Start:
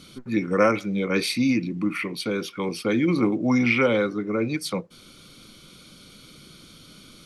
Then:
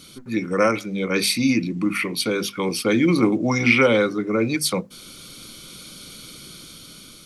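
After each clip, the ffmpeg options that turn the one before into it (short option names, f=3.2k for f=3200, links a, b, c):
-af "highshelf=f=5.5k:g=10,bandreject=f=50:t=h:w=6,bandreject=f=100:t=h:w=6,bandreject=f=150:t=h:w=6,bandreject=f=200:t=h:w=6,bandreject=f=250:t=h:w=6,dynaudnorm=f=550:g=5:m=5.5dB"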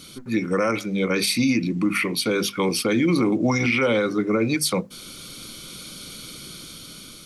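-af "alimiter=limit=-14dB:level=0:latency=1:release=90,volume=2dB"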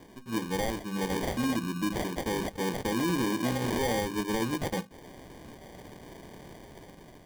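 -af "acrusher=samples=33:mix=1:aa=0.000001,volume=-8.5dB"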